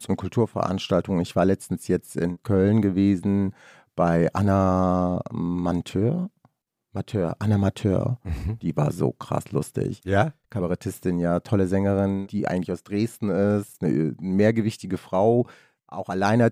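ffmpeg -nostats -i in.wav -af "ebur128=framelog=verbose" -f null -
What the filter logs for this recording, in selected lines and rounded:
Integrated loudness:
  I:         -24.1 LUFS
  Threshold: -34.4 LUFS
Loudness range:
  LRA:         3.7 LU
  Threshold: -44.4 LUFS
  LRA low:   -26.2 LUFS
  LRA high:  -22.5 LUFS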